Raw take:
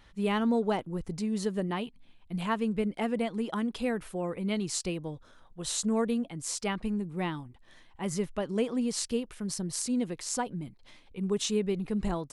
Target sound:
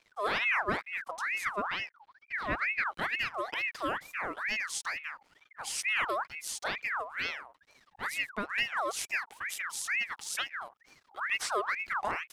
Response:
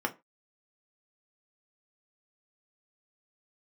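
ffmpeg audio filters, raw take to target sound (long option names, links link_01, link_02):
-filter_complex "[0:a]asettb=1/sr,asplit=3[link_01][link_02][link_03];[link_01]atrim=end=1.564[link_04];[link_02]atrim=start=1.56:end=2.85,asetpts=PTS-STARTPTS,afade=type=in:duration=0.004:curve=qsin,afade=type=out:start_time=1.286:duration=0.004:curve=qsin,aemphasis=mode=reproduction:type=75fm[link_05];[link_03]atrim=start=2.846[link_06];[link_04][link_05]acrossfade=duration=0.004:curve1=hsin:curve2=qsin[link_07];[link_07][link_06]acrossfade=duration=0.004:curve1=qsin:curve2=hsin,aeval=exprs='sgn(val(0))*max(abs(val(0))-0.00126,0)':channel_layout=same,aeval=exprs='val(0)*sin(2*PI*1600*n/s+1600*0.5/2.2*sin(2*PI*2.2*n/s))':channel_layout=same"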